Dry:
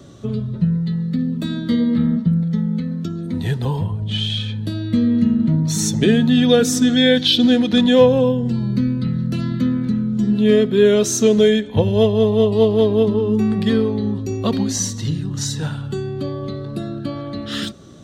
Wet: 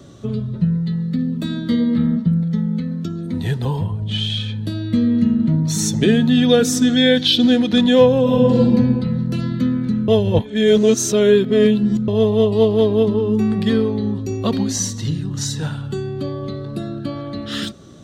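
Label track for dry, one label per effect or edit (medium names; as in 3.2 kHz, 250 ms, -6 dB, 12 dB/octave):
8.220000	8.620000	reverb throw, RT60 1.8 s, DRR -8 dB
10.080000	12.080000	reverse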